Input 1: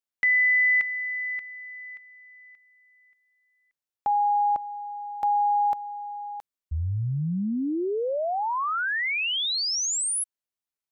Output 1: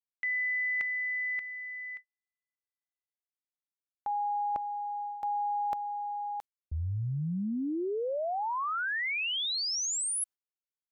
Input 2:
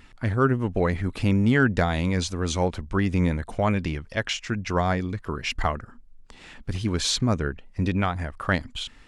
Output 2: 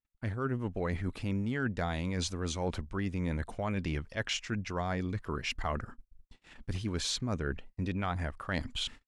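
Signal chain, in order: gate -43 dBFS, range -49 dB; reverse; compression 5:1, threshold -31 dBFS; reverse

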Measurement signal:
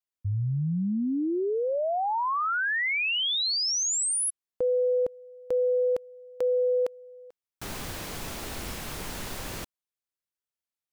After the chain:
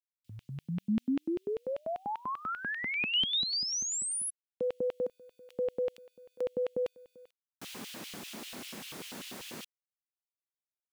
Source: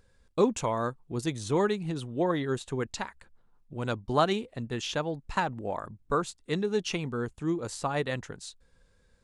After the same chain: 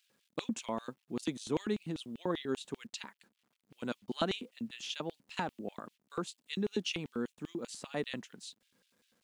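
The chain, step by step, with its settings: bit crusher 11-bit; LFO high-pass square 5.1 Hz 220–2900 Hz; trim -7.5 dB

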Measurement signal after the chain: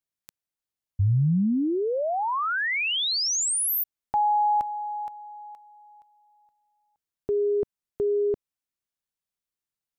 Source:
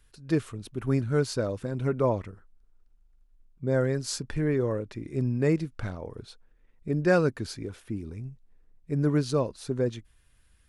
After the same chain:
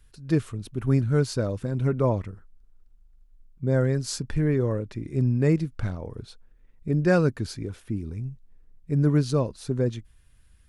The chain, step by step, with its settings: tone controls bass +6 dB, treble +1 dB

